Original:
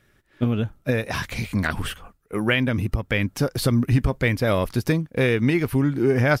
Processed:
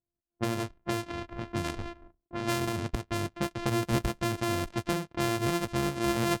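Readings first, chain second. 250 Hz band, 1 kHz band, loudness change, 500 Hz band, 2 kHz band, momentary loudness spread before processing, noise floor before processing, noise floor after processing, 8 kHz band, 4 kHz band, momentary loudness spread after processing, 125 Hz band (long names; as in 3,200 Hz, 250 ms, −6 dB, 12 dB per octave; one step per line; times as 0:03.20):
−8.5 dB, −1.5 dB, −8.5 dB, −9.0 dB, −11.0 dB, 7 LU, −62 dBFS, below −85 dBFS, −1.0 dB, −5.5 dB, 8 LU, −11.5 dB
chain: samples sorted by size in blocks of 128 samples
low-pass that shuts in the quiet parts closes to 610 Hz, open at −17.5 dBFS
noise gate with hold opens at −49 dBFS
level −9 dB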